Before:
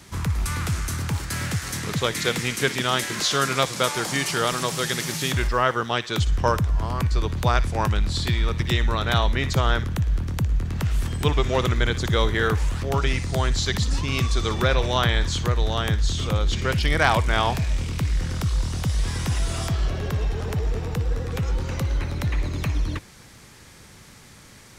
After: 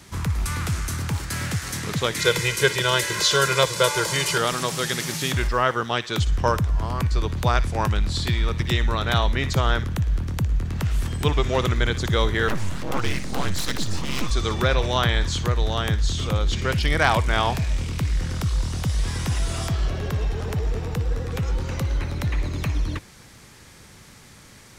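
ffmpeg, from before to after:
-filter_complex "[0:a]asettb=1/sr,asplit=3[a][b][c];[a]atrim=end=2.194[d];[b]atrim=start=2.19:end=4.38,asetpts=PTS-STARTPTS,afade=t=in:d=0.004:c=qsin,afade=t=out:st=2.186:d=0.004:c=qsin,aecho=1:1:2:0.99,atrim=end_sample=96579[e];[c]atrim=start=4.376[f];[d][e]acrossfade=d=0.004:c1=hsin:c2=qsin[g];[g][f]acrossfade=d=0.004:c1=qsin:c2=hsin,asettb=1/sr,asplit=3[h][i][j];[h]atrim=end=12.484[k];[i]atrim=start=12.48:end=14.31,asetpts=PTS-STARTPTS,afade=t=in:d=0.004:c=qsin,afade=t=out:st=1.826:d=0.004:c=qsin,aeval=exprs='abs(val(0))':c=same[l];[j]atrim=start=14.306[m];[k][l]acrossfade=d=0.004:c1=hsin:c2=qsin[n];[n][m]acrossfade=d=0.004:c1=qsin:c2=hsin"

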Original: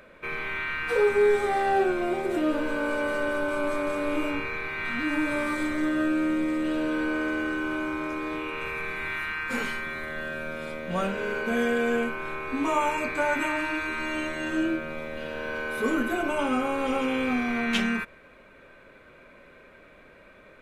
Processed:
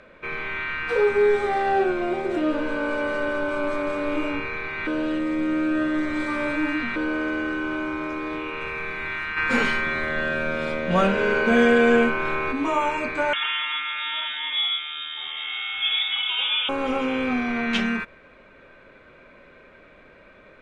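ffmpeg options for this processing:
-filter_complex "[0:a]asplit=3[a][b][c];[a]afade=t=out:st=9.36:d=0.02[d];[b]acontrast=63,afade=t=in:st=9.36:d=0.02,afade=t=out:st=12.51:d=0.02[e];[c]afade=t=in:st=12.51:d=0.02[f];[d][e][f]amix=inputs=3:normalize=0,asettb=1/sr,asplit=3[g][h][i];[g]atrim=end=13.334[j];[h]atrim=start=13.33:end=16.69,asetpts=PTS-STARTPTS,afade=t=in:d=0.004:c=qsin,afade=t=out:st=3.356:d=0.004:c=qsin,lowpass=f=3.1k:t=q:w=0.5098,lowpass=f=3.1k:t=q:w=0.6013,lowpass=f=3.1k:t=q:w=0.9,lowpass=f=3.1k:t=q:w=2.563,afreqshift=-3700[k];[i]atrim=start=16.686[l];[j][k]acrossfade=d=0.004:c1=hsin:c2=qsin[m];[m][l]acrossfade=d=0.004:c1=qsin:c2=hsin,asplit=3[n][o][p];[n]atrim=end=4.872[q];[o]atrim=start=4.868:end=6.962,asetpts=PTS-STARTPTS,areverse[r];[p]atrim=start=6.958[s];[q][r]acrossfade=d=0.004:c1=hsin:c2=hsin[t];[t][s]acrossfade=d=0.004:c1=hsin:c2=hsin,lowpass=5.5k,volume=2dB"

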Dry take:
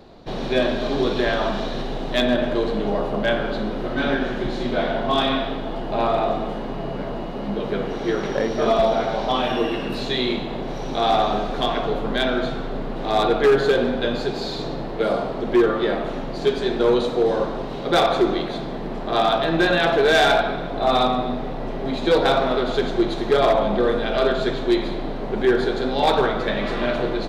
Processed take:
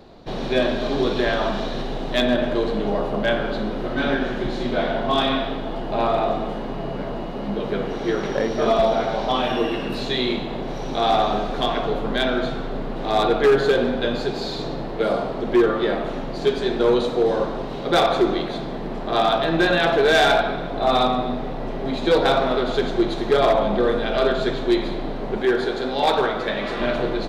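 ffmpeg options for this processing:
-filter_complex "[0:a]asettb=1/sr,asplit=3[a][b][c];[a]atrim=end=25.374[d];[b]atrim=start=25.37:end=26.8,asetpts=PTS-STARTPTS,afade=t=in:d=0.004:c=qsin,afade=t=out:st=1.426:d=0.004:c=qsin,lowshelf=f=200:g=-8[e];[c]atrim=start=26.796[f];[d][e]acrossfade=d=0.004:c1=hsin:c2=qsin[g];[g][f]acrossfade=d=0.004:c1=qsin:c2=hsin"

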